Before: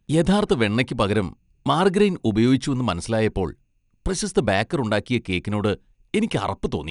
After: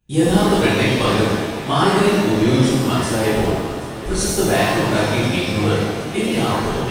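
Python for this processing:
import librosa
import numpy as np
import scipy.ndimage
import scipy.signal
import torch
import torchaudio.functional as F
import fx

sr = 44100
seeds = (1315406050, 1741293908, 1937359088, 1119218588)

p1 = fx.high_shelf(x, sr, hz=7200.0, db=6.5)
p2 = p1 + fx.echo_heads(p1, sr, ms=258, heads='first and third', feedback_pct=72, wet_db=-17.5, dry=0)
p3 = fx.rev_shimmer(p2, sr, seeds[0], rt60_s=1.3, semitones=7, shimmer_db=-8, drr_db=-12.0)
y = p3 * 10.0 ** (-8.0 / 20.0)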